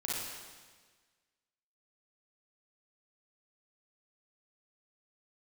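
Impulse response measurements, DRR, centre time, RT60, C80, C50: −6.5 dB, 113 ms, 1.5 s, 0.5 dB, −4.0 dB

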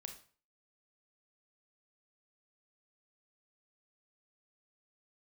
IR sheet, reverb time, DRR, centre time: 0.40 s, 4.5 dB, 15 ms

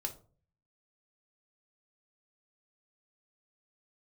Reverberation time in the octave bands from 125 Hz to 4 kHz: 0.75, 0.55, 0.45, 0.40, 0.25, 0.25 seconds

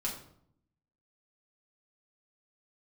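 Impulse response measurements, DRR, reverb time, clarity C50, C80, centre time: −4.0 dB, 0.65 s, 7.0 dB, 10.0 dB, 27 ms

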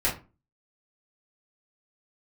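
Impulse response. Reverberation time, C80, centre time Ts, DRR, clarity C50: 0.30 s, 16.5 dB, 24 ms, −7.5 dB, 10.0 dB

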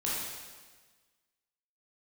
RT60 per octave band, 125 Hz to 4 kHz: 1.5, 1.4, 1.4, 1.4, 1.4, 1.4 seconds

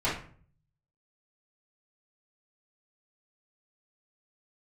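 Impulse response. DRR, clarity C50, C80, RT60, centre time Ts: −11.0 dB, 5.0 dB, 10.5 dB, 0.50 s, 35 ms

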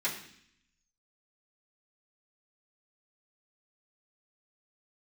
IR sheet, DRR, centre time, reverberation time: −9.5 dB, 25 ms, 0.65 s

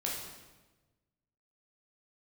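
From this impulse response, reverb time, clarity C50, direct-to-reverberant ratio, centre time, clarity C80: 1.2 s, 1.5 dB, −4.0 dB, 61 ms, 4.5 dB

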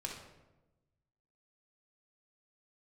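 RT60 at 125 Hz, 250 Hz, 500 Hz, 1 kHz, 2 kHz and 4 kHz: 1.7, 1.3, 1.2, 0.95, 0.80, 0.65 seconds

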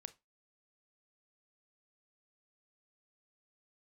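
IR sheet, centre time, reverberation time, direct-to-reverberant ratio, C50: 3 ms, 0.20 s, 13.0 dB, 20.0 dB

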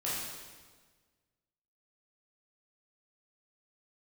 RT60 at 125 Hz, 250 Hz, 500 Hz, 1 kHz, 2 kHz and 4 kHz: 1.7, 1.6, 1.5, 1.4, 1.3, 1.3 seconds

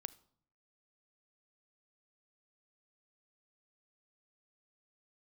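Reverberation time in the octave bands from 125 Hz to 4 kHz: 0.80, 0.75, 0.65, 0.60, 0.45, 0.45 seconds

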